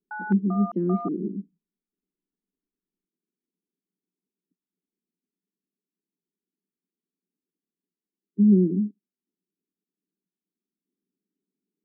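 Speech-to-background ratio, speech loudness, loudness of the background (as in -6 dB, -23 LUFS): 13.0 dB, -23.5 LUFS, -36.5 LUFS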